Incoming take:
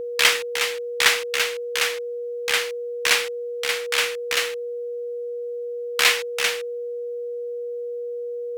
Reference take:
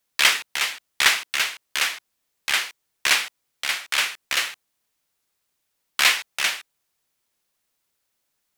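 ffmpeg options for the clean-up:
ffmpeg -i in.wav -af "bandreject=frequency=480:width=30" out.wav

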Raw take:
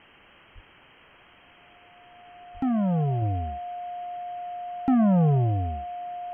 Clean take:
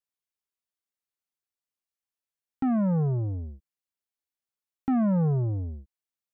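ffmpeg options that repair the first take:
ffmpeg -i in.wav -filter_complex "[0:a]bandreject=frequency=710:width=30,asplit=3[link_01][link_02][link_03];[link_01]afade=type=out:start_time=0.54:duration=0.02[link_04];[link_02]highpass=frequency=140:width=0.5412,highpass=frequency=140:width=1.3066,afade=type=in:start_time=0.54:duration=0.02,afade=type=out:start_time=0.66:duration=0.02[link_05];[link_03]afade=type=in:start_time=0.66:duration=0.02[link_06];[link_04][link_05][link_06]amix=inputs=3:normalize=0,asplit=3[link_07][link_08][link_09];[link_07]afade=type=out:start_time=2.53:duration=0.02[link_10];[link_08]highpass=frequency=140:width=0.5412,highpass=frequency=140:width=1.3066,afade=type=in:start_time=2.53:duration=0.02,afade=type=out:start_time=2.65:duration=0.02[link_11];[link_09]afade=type=in:start_time=2.65:duration=0.02[link_12];[link_10][link_11][link_12]amix=inputs=3:normalize=0,afwtdn=0.0045,asetnsamples=nb_out_samples=441:pad=0,asendcmd='3.22 volume volume -3.5dB',volume=0dB" out.wav

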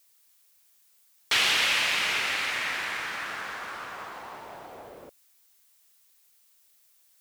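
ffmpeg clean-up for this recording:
ffmpeg -i in.wav -af "agate=range=-21dB:threshold=-55dB" out.wav

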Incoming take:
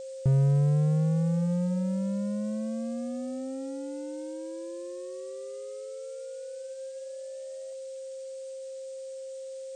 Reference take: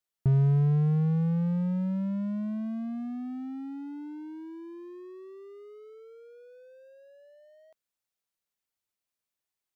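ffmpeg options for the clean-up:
ffmpeg -i in.wav -af "bandreject=frequency=530:width=30,afftdn=noise_reduction=30:noise_floor=-40" out.wav

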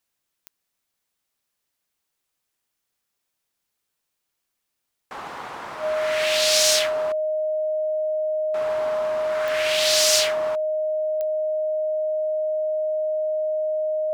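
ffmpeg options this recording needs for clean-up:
ffmpeg -i in.wav -af "adeclick=threshold=4,bandreject=frequency=620:width=30" out.wav

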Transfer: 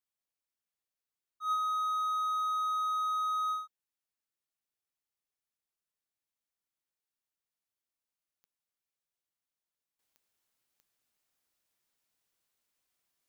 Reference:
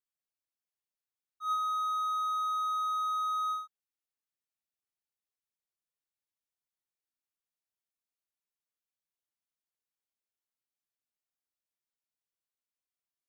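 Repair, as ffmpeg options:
ffmpeg -i in.wav -af "adeclick=threshold=4,asetnsamples=nb_out_samples=441:pad=0,asendcmd='9.99 volume volume -11.5dB',volume=0dB" out.wav

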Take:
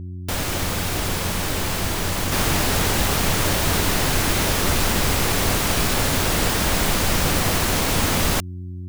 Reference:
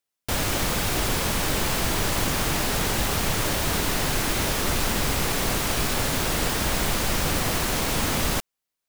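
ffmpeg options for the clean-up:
ffmpeg -i in.wav -af "bandreject=frequency=90.4:width_type=h:width=4,bandreject=frequency=180.8:width_type=h:width=4,bandreject=frequency=271.2:width_type=h:width=4,bandreject=frequency=361.6:width_type=h:width=4,asetnsamples=nb_out_samples=441:pad=0,asendcmd='2.32 volume volume -4dB',volume=0dB" out.wav

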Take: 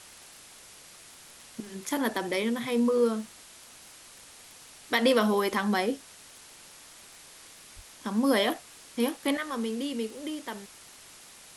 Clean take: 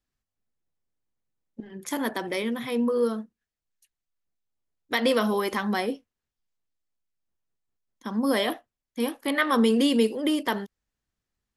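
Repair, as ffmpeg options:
ffmpeg -i in.wav -filter_complex "[0:a]adeclick=threshold=4,asplit=3[link_01][link_02][link_03];[link_01]afade=type=out:start_time=7.75:duration=0.02[link_04];[link_02]highpass=frequency=140:width=0.5412,highpass=frequency=140:width=1.3066,afade=type=in:start_time=7.75:duration=0.02,afade=type=out:start_time=7.87:duration=0.02[link_05];[link_03]afade=type=in:start_time=7.87:duration=0.02[link_06];[link_04][link_05][link_06]amix=inputs=3:normalize=0,afwtdn=0.004,asetnsamples=nb_out_samples=441:pad=0,asendcmd='9.37 volume volume 11dB',volume=0dB" out.wav

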